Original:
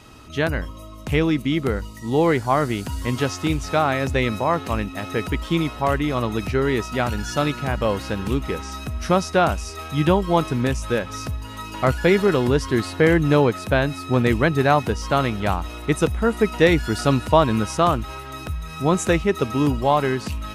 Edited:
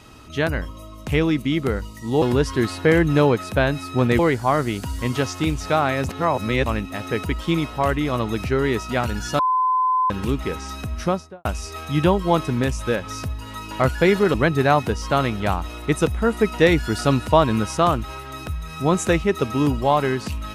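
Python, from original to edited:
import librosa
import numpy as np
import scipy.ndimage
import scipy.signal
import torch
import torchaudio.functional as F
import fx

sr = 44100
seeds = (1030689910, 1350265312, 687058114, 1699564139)

y = fx.studio_fade_out(x, sr, start_s=8.95, length_s=0.53)
y = fx.edit(y, sr, fx.reverse_span(start_s=4.12, length_s=0.57),
    fx.bleep(start_s=7.42, length_s=0.71, hz=1020.0, db=-16.0),
    fx.move(start_s=12.37, length_s=1.97, to_s=2.22), tone=tone)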